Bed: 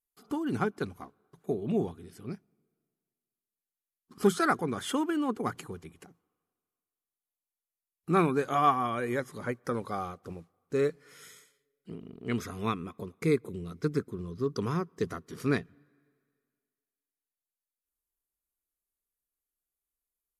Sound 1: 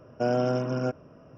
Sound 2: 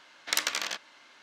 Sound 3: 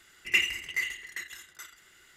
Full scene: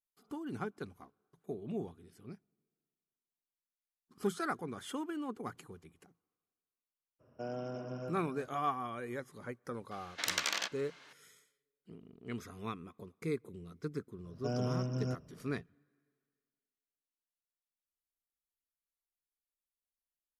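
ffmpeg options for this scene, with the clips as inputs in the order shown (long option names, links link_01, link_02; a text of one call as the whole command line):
ffmpeg -i bed.wav -i cue0.wav -i cue1.wav -filter_complex "[1:a]asplit=2[link_01][link_02];[0:a]volume=-10dB[link_03];[link_01]aecho=1:1:358:0.398[link_04];[2:a]alimiter=level_in=11dB:limit=-1dB:release=50:level=0:latency=1[link_05];[link_02]bass=frequency=250:gain=12,treble=frequency=4000:gain=14[link_06];[link_04]atrim=end=1.37,asetpts=PTS-STARTPTS,volume=-15.5dB,afade=type=in:duration=0.02,afade=type=out:start_time=1.35:duration=0.02,adelay=7190[link_07];[link_05]atrim=end=1.22,asetpts=PTS-STARTPTS,volume=-13dB,afade=type=in:duration=0.004:curve=hsin,afade=type=out:start_time=1.216:duration=0.004:curve=hsin,adelay=9910[link_08];[link_06]atrim=end=1.37,asetpts=PTS-STARTPTS,volume=-14.5dB,afade=type=in:duration=0.004:curve=hsin,afade=type=out:start_time=1.366:duration=0.004:curve=hsin,adelay=14240[link_09];[link_03][link_07][link_08][link_09]amix=inputs=4:normalize=0" out.wav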